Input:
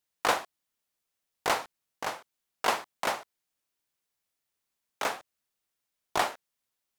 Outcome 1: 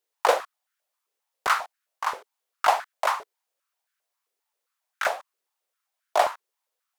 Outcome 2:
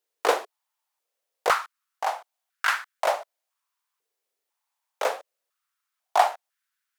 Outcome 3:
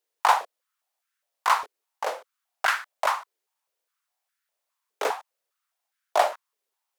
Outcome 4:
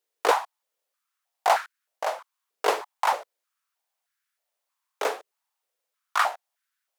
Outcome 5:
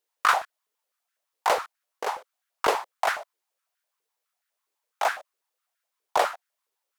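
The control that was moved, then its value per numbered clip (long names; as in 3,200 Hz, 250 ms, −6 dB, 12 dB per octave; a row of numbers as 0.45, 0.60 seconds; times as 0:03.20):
high-pass on a step sequencer, speed: 7.5, 2, 4.9, 3.2, 12 Hertz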